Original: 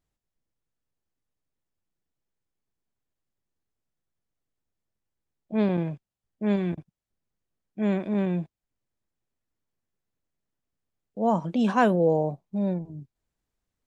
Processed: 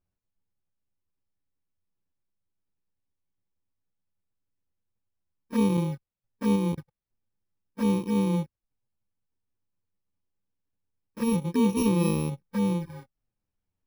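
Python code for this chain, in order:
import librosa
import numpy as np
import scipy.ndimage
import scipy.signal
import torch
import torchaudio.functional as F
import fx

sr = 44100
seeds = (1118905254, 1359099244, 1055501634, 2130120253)

y = fx.bit_reversed(x, sr, seeds[0], block=64)
y = fx.env_flanger(y, sr, rest_ms=10.8, full_db=-24.5)
y = fx.lowpass(y, sr, hz=1600.0, slope=6)
y = y * 10.0 ** (3.5 / 20.0)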